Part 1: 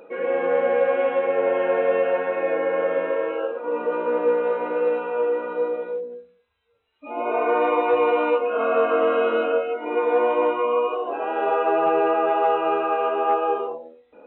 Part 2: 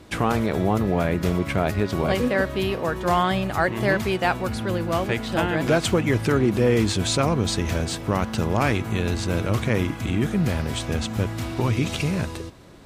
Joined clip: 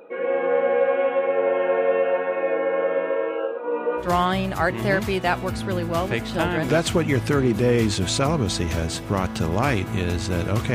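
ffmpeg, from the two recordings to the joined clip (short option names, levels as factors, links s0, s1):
-filter_complex "[0:a]apad=whole_dur=10.74,atrim=end=10.74,atrim=end=4.08,asetpts=PTS-STARTPTS[s0];[1:a]atrim=start=2.94:end=9.72,asetpts=PTS-STARTPTS[s1];[s0][s1]acrossfade=d=0.12:c1=tri:c2=tri"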